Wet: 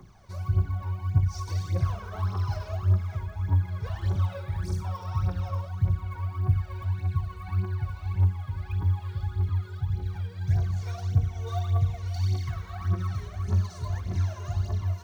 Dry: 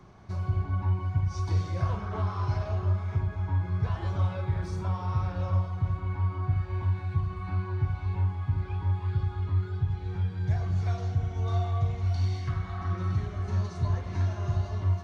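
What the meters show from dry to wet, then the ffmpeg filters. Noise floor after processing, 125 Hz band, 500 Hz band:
−43 dBFS, +1.0 dB, −2.5 dB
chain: -af "aphaser=in_gain=1:out_gain=1:delay=2.2:decay=0.71:speed=1.7:type=triangular,aemphasis=mode=production:type=50fm,volume=-5dB"

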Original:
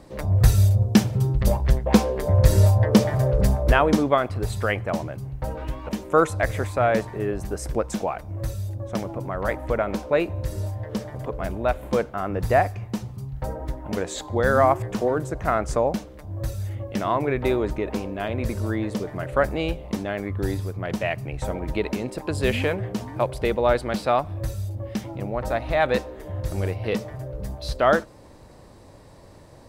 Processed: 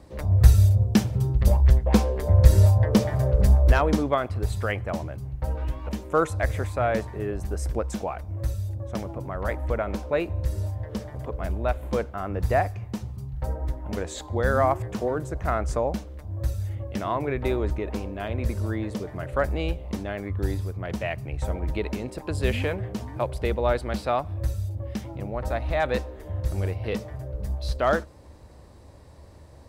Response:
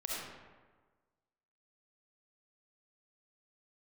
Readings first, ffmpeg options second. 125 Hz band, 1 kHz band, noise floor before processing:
+0.5 dB, −4.0 dB, −47 dBFS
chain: -filter_complex "[0:a]equalizer=frequency=71:width_type=o:width=0.49:gain=14,acrossover=split=850[link_01][link_02];[link_02]asoftclip=type=hard:threshold=-14.5dB[link_03];[link_01][link_03]amix=inputs=2:normalize=0,volume=-4dB"

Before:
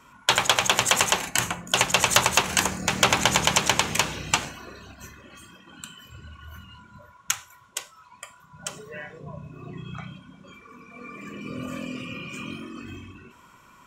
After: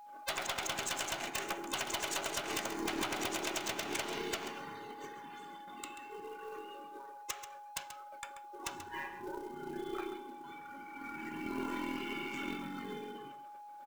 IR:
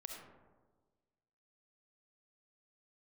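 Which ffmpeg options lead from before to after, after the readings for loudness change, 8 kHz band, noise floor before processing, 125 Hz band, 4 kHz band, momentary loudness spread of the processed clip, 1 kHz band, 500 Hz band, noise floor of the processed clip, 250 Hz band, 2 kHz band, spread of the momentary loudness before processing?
−17.0 dB, −16.0 dB, −54 dBFS, −19.5 dB, −16.0 dB, 13 LU, −12.5 dB, −9.0 dB, −51 dBFS, −7.0 dB, −14.0 dB, 21 LU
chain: -filter_complex "[0:a]afftfilt=real='real(if(between(b,1,1008),(2*floor((b-1)/24)+1)*24-b,b),0)':imag='imag(if(between(b,1,1008),(2*floor((b-1)/24)+1)*24-b,b),0)*if(between(b,1,1008),-1,1)':win_size=2048:overlap=0.75,highpass=190,agate=range=-20dB:threshold=-51dB:ratio=16:detection=peak,adynamicequalizer=threshold=0.02:dfrequency=1800:dqfactor=2.6:tfrequency=1800:tqfactor=2.6:attack=5:release=100:ratio=0.375:range=1.5:mode=cutabove:tftype=bell,alimiter=limit=-9dB:level=0:latency=1:release=118,acompressor=threshold=-27dB:ratio=16,aeval=exprs='val(0)+0.00501*sin(2*PI*830*n/s)':channel_layout=same,adynamicsmooth=sensitivity=7:basefreq=3700,aeval=exprs='0.266*(cos(1*acos(clip(val(0)/0.266,-1,1)))-cos(1*PI/2))+0.0596*(cos(2*acos(clip(val(0)/0.266,-1,1)))-cos(2*PI/2))+0.0668*(cos(3*acos(clip(val(0)/0.266,-1,1)))-cos(3*PI/2))+0.00531*(cos(5*acos(clip(val(0)/0.266,-1,1)))-cos(5*PI/2))':channel_layout=same,acrusher=bits=5:mode=log:mix=0:aa=0.000001,aeval=exprs='0.0282*(abs(mod(val(0)/0.0282+3,4)-2)-1)':channel_layout=same,asplit=2[link_01][link_02];[link_02]aecho=0:1:135:0.282[link_03];[link_01][link_03]amix=inputs=2:normalize=0,volume=5.5dB"

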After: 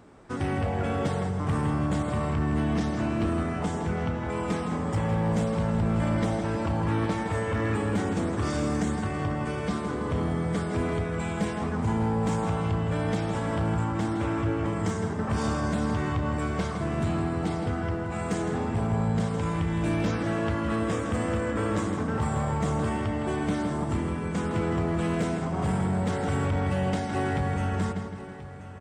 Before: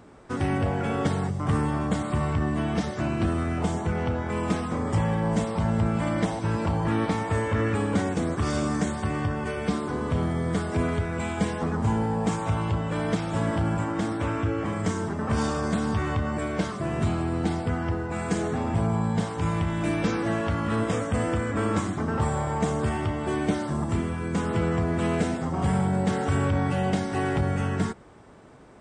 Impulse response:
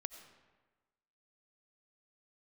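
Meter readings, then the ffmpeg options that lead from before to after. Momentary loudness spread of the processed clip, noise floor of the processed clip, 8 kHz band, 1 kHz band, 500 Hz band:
3 LU, −32 dBFS, −2.5 dB, −1.5 dB, −1.0 dB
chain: -filter_complex "[0:a]asplit=2[link_01][link_02];[link_02]adelay=162,lowpass=frequency=3500:poles=1,volume=-7dB,asplit=2[link_03][link_04];[link_04]adelay=162,lowpass=frequency=3500:poles=1,volume=0.55,asplit=2[link_05][link_06];[link_06]adelay=162,lowpass=frequency=3500:poles=1,volume=0.55,asplit=2[link_07][link_08];[link_08]adelay=162,lowpass=frequency=3500:poles=1,volume=0.55,asplit=2[link_09][link_10];[link_10]adelay=162,lowpass=frequency=3500:poles=1,volume=0.55,asplit=2[link_11][link_12];[link_12]adelay=162,lowpass=frequency=3500:poles=1,volume=0.55,asplit=2[link_13][link_14];[link_14]adelay=162,lowpass=frequency=3500:poles=1,volume=0.55[link_15];[link_03][link_05][link_07][link_09][link_11][link_13][link_15]amix=inputs=7:normalize=0[link_16];[link_01][link_16]amix=inputs=2:normalize=0,asoftclip=type=hard:threshold=-18dB,asplit=2[link_17][link_18];[link_18]aecho=0:1:1033:0.178[link_19];[link_17][link_19]amix=inputs=2:normalize=0,volume=-2.5dB"

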